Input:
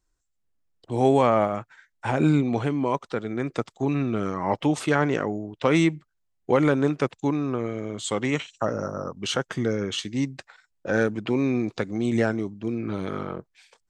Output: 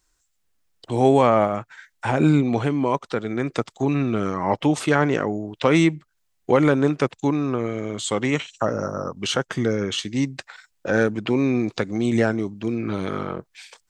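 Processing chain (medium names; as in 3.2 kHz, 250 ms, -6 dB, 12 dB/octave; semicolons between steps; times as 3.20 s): tape noise reduction on one side only encoder only; trim +3 dB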